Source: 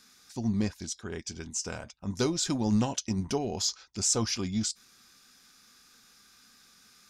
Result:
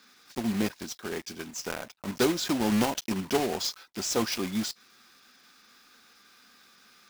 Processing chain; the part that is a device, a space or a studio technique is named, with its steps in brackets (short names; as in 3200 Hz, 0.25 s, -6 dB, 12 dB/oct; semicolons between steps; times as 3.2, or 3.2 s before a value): early digital voice recorder (BPF 240–3900 Hz; block floating point 3-bit); gain +4.5 dB